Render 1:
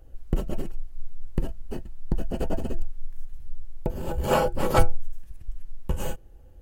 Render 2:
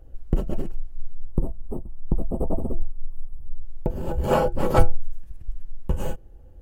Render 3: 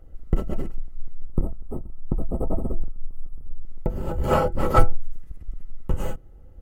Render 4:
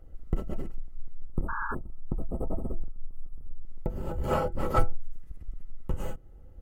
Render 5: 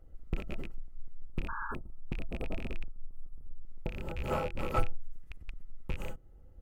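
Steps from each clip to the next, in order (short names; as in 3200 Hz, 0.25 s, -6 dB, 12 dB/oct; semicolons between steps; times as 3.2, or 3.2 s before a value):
spectral gain 1.27–3.65, 1300–7800 Hz -24 dB; tilt shelf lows +4 dB, about 1400 Hz; gain -1 dB
octaver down 2 oct, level -1 dB; small resonant body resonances 1300/2000 Hz, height 13 dB, ringing for 45 ms; gain -1 dB
in parallel at 0 dB: compressor, threshold -29 dBFS, peak gain reduction 20.5 dB; on the sum: painted sound noise, 1.48–1.75, 840–1700 Hz -25 dBFS; gain -9 dB
rattling part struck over -33 dBFS, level -26 dBFS; gain -5.5 dB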